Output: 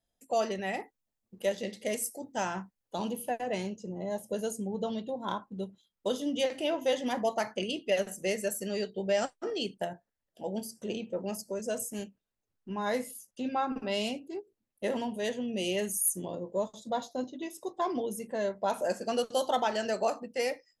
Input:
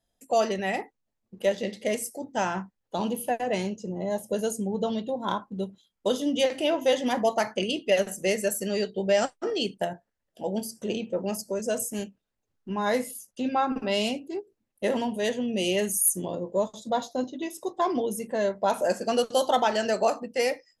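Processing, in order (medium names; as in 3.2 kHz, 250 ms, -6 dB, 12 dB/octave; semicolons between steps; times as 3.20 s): 0.80–3.12 s: treble shelf 6.6 kHz +8 dB; trim -5.5 dB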